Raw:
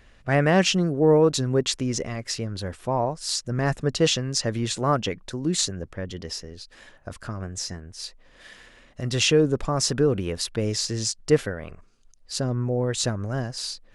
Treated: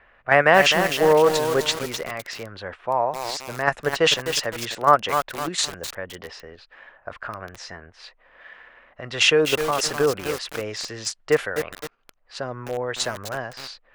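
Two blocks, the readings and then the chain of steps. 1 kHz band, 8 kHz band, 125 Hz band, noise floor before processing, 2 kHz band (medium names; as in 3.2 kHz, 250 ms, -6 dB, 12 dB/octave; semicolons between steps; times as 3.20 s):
+8.0 dB, -1.5 dB, -9.5 dB, -54 dBFS, +8.5 dB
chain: treble shelf 5.9 kHz +9 dB; in parallel at +1 dB: level held to a coarse grid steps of 21 dB; on the sum: level-controlled noise filter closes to 1.9 kHz, open at -15 dBFS; three-band isolator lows -18 dB, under 550 Hz, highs -17 dB, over 2.9 kHz; bit-crushed delay 255 ms, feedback 55%, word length 5-bit, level -6 dB; trim +4.5 dB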